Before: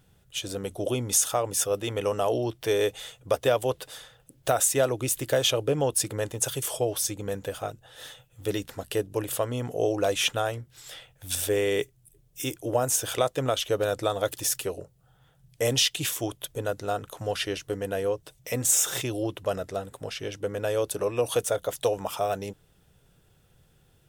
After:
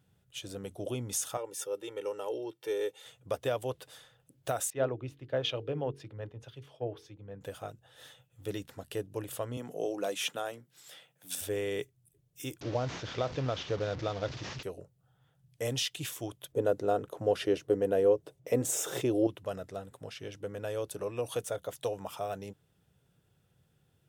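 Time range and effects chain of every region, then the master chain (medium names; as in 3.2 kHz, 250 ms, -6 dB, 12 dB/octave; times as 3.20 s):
1.37–3.06 s: ladder high-pass 170 Hz, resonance 20% + comb 2.2 ms, depth 81%
4.70–7.41 s: distance through air 310 m + de-hum 46.2 Hz, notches 10 + three bands expanded up and down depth 100%
9.57–11.41 s: steep high-pass 150 Hz + treble shelf 7.1 kHz +5 dB
12.61–14.63 s: one-bit delta coder 32 kbps, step -29.5 dBFS + bass shelf 190 Hz +6.5 dB
16.52–19.27 s: peaking EQ 410 Hz +13 dB 1.9 oct + tape noise reduction on one side only decoder only
whole clip: high-pass 86 Hz; tone controls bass +4 dB, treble -2 dB; trim -9 dB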